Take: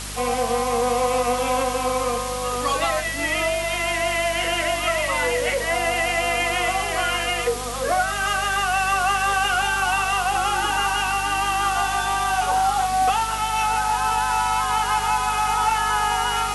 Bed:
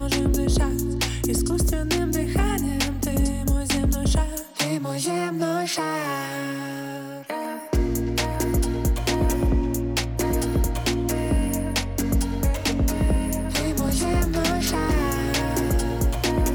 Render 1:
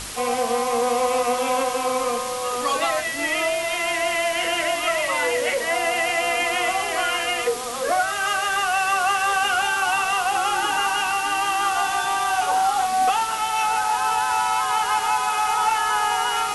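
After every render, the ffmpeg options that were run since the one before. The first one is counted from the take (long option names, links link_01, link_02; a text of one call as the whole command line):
ffmpeg -i in.wav -af "bandreject=frequency=50:width_type=h:width=4,bandreject=frequency=100:width_type=h:width=4,bandreject=frequency=150:width_type=h:width=4,bandreject=frequency=200:width_type=h:width=4,bandreject=frequency=250:width_type=h:width=4" out.wav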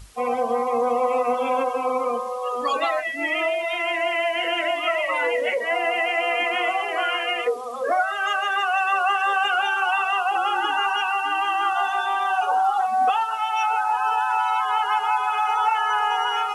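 ffmpeg -i in.wav -af "afftdn=noise_reduction=19:noise_floor=-27" out.wav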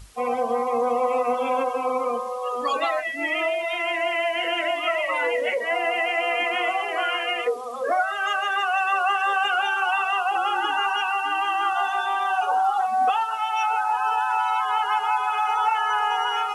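ffmpeg -i in.wav -af "volume=-1dB" out.wav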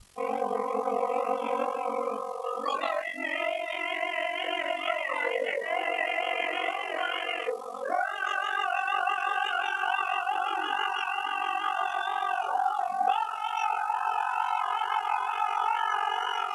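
ffmpeg -i in.wav -af "aeval=exprs='val(0)*sin(2*PI*23*n/s)':channel_layout=same,flanger=delay=19:depth=6.5:speed=2.2" out.wav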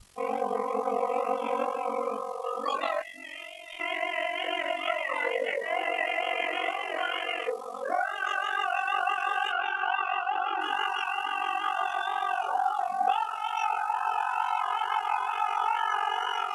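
ffmpeg -i in.wav -filter_complex "[0:a]asettb=1/sr,asplit=3[link_01][link_02][link_03];[link_01]atrim=end=3.024[link_04];[link_02]atrim=start=3.02:end=3.8,asetpts=PTS-STARTPTS,afade=type=in:duration=0.004:curve=qsin,afade=type=out:start_time=0.776:duration=0.004:curve=qsin,acrossover=split=130|3000[link_05][link_06][link_07];[link_06]acompressor=threshold=-47dB:ratio=5:attack=3.2:release=140:knee=2.83:detection=peak[link_08];[link_05][link_08][link_07]amix=inputs=3:normalize=0[link_09];[link_03]atrim=start=3.796[link_10];[link_04][link_09]acrossfade=duration=0.004:curve1=hsin:curve2=qsin[link_11];[link_11][link_10]acrossfade=duration=0.004:curve1=qsin:curve2=hsin,asettb=1/sr,asplit=3[link_12][link_13][link_14];[link_12]atrim=end=9.524[link_15];[link_13]atrim=start=9.52:end=10.61,asetpts=PTS-STARTPTS,afade=type=in:duration=0.004:curve=qsin,afade=type=out:start_time=1.086:duration=0.004:curve=qsin,highpass=160,lowpass=3400[link_16];[link_14]atrim=start=10.606[link_17];[link_15][link_16]acrossfade=duration=0.004:curve1=hsin:curve2=qsin[link_18];[link_18][link_17]acrossfade=duration=0.004:curve1=qsin:curve2=hsin" out.wav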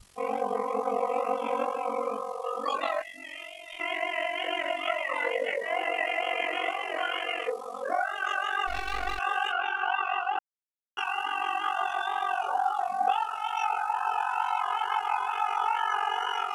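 ffmpeg -i in.wav -filter_complex "[0:a]asettb=1/sr,asplit=3[link_01][link_02][link_03];[link_01]atrim=end=8.674[link_04];[link_02]atrim=start=8.67:end=9.19,asetpts=PTS-STARTPTS,afade=type=in:duration=0.004:curve=qsin,afade=type=out:start_time=0.516:duration=0.004:curve=qsin,aeval=exprs='max(val(0),0)':channel_layout=same[link_05];[link_03]atrim=start=9.186[link_06];[link_04][link_05]acrossfade=duration=0.004:curve1=hsin:curve2=qsin[link_07];[link_07][link_06]acrossfade=duration=0.004:curve1=qsin:curve2=hsin,asplit=3[link_08][link_09][link_10];[link_08]atrim=end=10.39,asetpts=PTS-STARTPTS,afade=type=out:start_time=10.386:duration=0.004:curve=hsin[link_11];[link_09]atrim=start=10.39:end=10.97,asetpts=PTS-STARTPTS,volume=0[link_12];[link_10]atrim=start=10.97,asetpts=PTS-STARTPTS,afade=type=in:duration=0.004:curve=hsin[link_13];[link_11][link_12][link_13]concat=n=3:v=0:a=1" out.wav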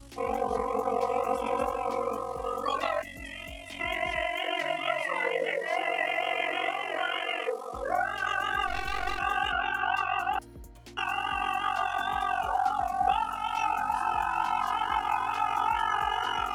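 ffmpeg -i in.wav -i bed.wav -filter_complex "[1:a]volume=-25dB[link_01];[0:a][link_01]amix=inputs=2:normalize=0" out.wav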